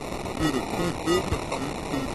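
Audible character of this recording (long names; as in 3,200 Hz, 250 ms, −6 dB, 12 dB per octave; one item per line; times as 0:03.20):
a quantiser's noise floor 6 bits, dither triangular
phaser sweep stages 2, 2.2 Hz, lowest notch 730–2,200 Hz
aliases and images of a low sample rate 1,600 Hz, jitter 0%
AAC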